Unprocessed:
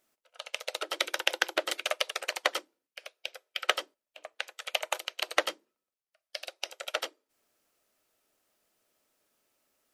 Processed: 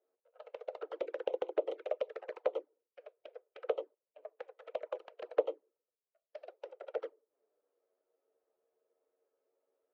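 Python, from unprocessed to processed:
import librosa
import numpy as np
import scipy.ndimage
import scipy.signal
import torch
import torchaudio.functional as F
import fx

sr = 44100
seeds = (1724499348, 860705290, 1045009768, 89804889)

y = fx.diode_clip(x, sr, knee_db=-13.0)
y = fx.env_flanger(y, sr, rest_ms=11.2, full_db=-28.5)
y = fx.ladder_bandpass(y, sr, hz=490.0, resonance_pct=70)
y = F.gain(torch.from_numpy(y), 9.5).numpy()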